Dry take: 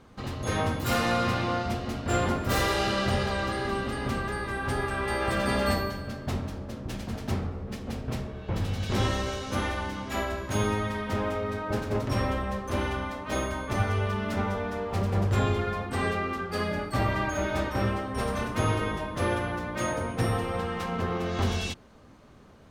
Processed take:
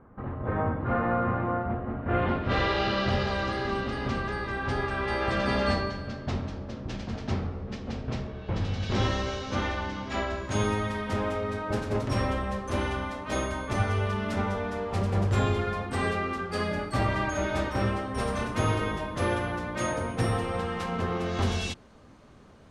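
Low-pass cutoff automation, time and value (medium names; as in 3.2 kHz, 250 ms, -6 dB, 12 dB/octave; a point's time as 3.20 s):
low-pass 24 dB/octave
1.97 s 1.6 kHz
2.33 s 3.4 kHz
3.39 s 6.1 kHz
10.27 s 6.1 kHz
10.72 s 11 kHz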